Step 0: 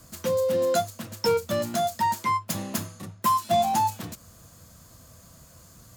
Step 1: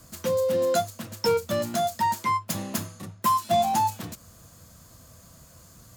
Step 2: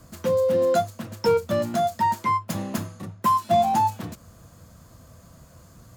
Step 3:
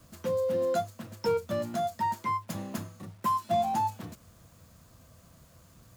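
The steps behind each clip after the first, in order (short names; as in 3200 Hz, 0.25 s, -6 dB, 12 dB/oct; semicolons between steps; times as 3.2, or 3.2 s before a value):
nothing audible
high shelf 2600 Hz -9.5 dB; gain +3.5 dB
bit-crush 9-bit; gain -7.5 dB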